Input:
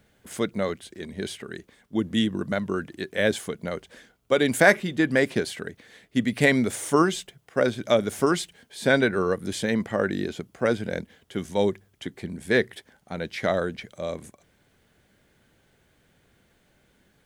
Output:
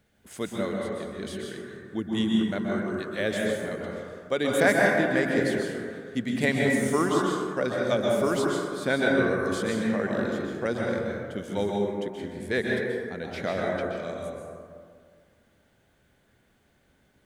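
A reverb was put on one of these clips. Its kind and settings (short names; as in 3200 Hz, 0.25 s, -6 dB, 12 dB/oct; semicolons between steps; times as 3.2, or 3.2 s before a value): plate-style reverb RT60 2 s, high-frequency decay 0.35×, pre-delay 0.115 s, DRR -2 dB; gain -6 dB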